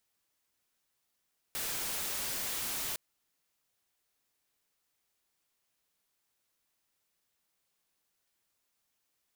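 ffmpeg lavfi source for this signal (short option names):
-f lavfi -i "anoisesrc=c=white:a=0.0274:d=1.41:r=44100:seed=1"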